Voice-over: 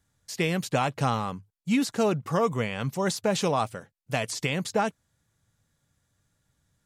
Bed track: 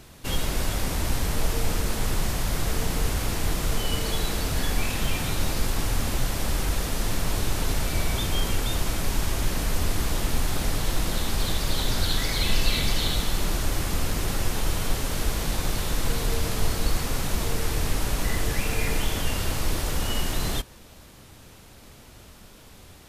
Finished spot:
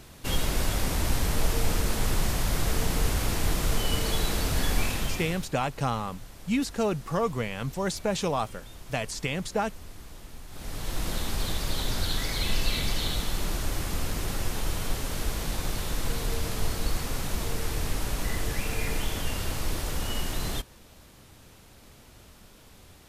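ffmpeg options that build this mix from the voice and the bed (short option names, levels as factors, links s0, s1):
-filter_complex "[0:a]adelay=4800,volume=0.75[s0];[1:a]volume=5.62,afade=t=out:st=4.82:d=0.66:silence=0.112202,afade=t=in:st=10.49:d=0.6:silence=0.16788[s1];[s0][s1]amix=inputs=2:normalize=0"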